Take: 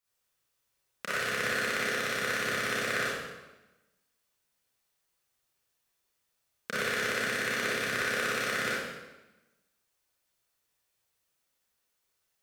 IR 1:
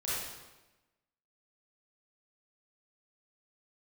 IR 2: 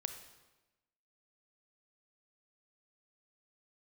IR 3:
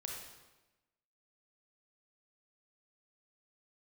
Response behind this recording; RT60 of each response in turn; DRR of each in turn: 1; 1.1, 1.1, 1.1 s; -10.0, 7.5, -0.5 dB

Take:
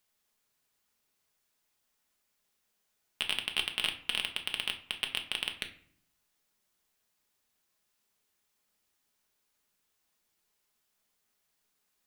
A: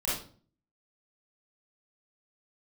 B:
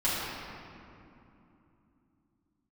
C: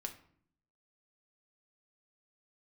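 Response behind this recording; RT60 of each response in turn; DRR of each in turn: C; 0.45, 2.9, 0.60 s; -9.5, -11.5, 4.0 dB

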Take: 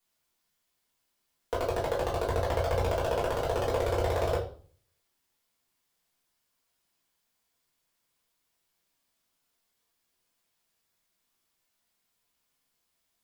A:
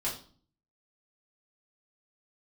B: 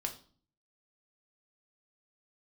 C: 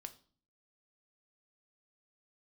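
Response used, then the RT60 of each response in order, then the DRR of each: A; 0.45, 0.45, 0.45 s; -6.5, 3.0, 8.0 dB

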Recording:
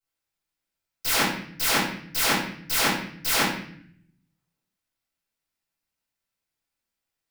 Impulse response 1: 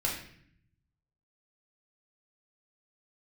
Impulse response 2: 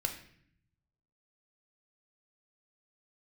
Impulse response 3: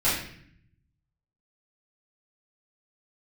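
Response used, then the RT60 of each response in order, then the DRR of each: 3; 0.60, 0.60, 0.60 s; -3.5, 3.5, -11.5 dB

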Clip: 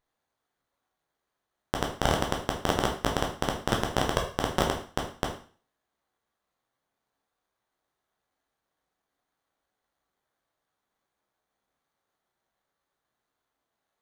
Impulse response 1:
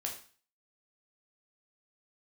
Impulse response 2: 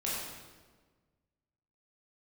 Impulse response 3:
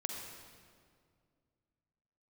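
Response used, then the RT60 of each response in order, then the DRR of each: 1; 0.40, 1.4, 2.1 s; 0.0, -7.5, 1.5 dB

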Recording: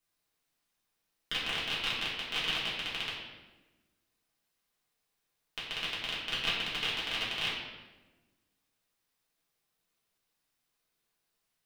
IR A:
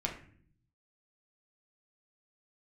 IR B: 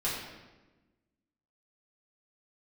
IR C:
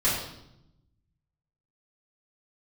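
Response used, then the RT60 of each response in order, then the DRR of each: B; 0.55, 1.2, 0.80 s; -0.5, -8.5, -11.5 dB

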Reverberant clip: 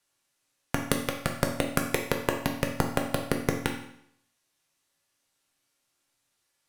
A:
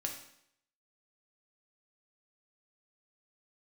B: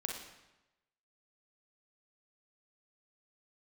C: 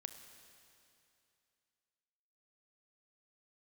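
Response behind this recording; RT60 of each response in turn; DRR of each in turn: A; 0.70, 1.0, 2.7 s; 1.5, 0.5, 7.5 dB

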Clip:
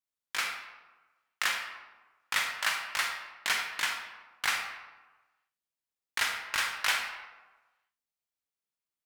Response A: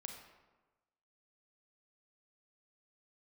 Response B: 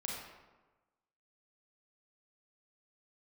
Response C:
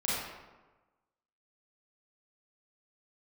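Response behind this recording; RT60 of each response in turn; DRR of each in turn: A; 1.2, 1.2, 1.2 s; 2.5, -3.0, -8.5 dB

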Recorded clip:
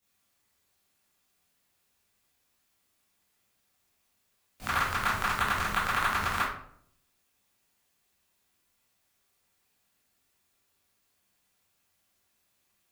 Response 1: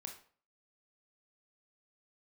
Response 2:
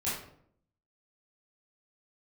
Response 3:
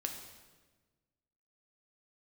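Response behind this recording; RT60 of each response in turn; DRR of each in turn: 2; 0.45, 0.65, 1.3 s; 3.0, -10.5, 2.5 dB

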